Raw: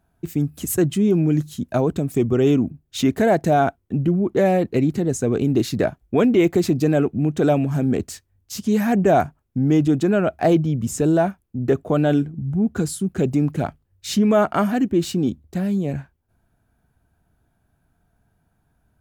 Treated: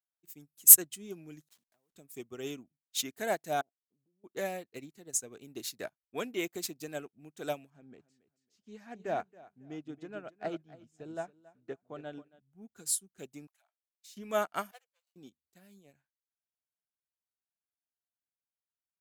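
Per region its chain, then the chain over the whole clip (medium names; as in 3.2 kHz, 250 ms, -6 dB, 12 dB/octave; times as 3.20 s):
1.48–1.95 s: send-on-delta sampling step -33.5 dBFS + compression 10:1, threshold -34 dBFS + loudspeaker Doppler distortion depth 0.33 ms
3.61–4.24 s: four-pole ladder low-pass 580 Hz, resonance 35% + compression 3:1, threshold -33 dBFS
7.70–12.40 s: tape spacing loss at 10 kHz 24 dB + feedback delay 275 ms, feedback 26%, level -8.5 dB
13.47–14.17 s: steep high-pass 620 Hz 96 dB/octave + compression, threshold -34 dBFS
14.71–15.16 s: median filter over 25 samples + brick-wall FIR high-pass 450 Hz + expander -39 dBFS
whole clip: tilt EQ +4 dB/octave; upward expansion 2.5:1, over -35 dBFS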